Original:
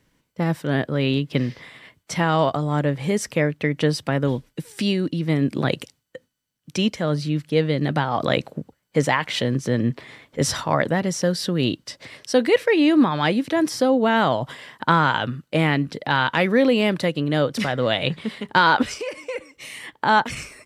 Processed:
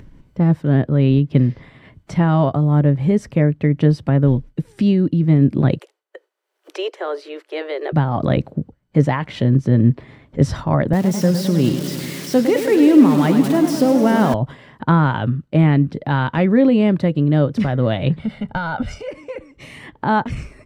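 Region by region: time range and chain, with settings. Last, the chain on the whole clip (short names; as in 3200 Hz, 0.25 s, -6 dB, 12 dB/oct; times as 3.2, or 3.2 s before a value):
5.78–7.92 spectral limiter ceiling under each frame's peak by 12 dB + steep high-pass 360 Hz 72 dB/oct + bell 5700 Hz -4 dB 1.9 oct
10.93–14.34 switching spikes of -13 dBFS + HPF 150 Hz + warbling echo 0.102 s, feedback 77%, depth 159 cents, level -9 dB
18.19–19.11 compressor 2.5:1, threshold -24 dBFS + comb 1.4 ms, depth 75%
whole clip: tilt -4 dB/oct; notch 480 Hz, Q 12; upward compressor, threshold -30 dBFS; gain -1.5 dB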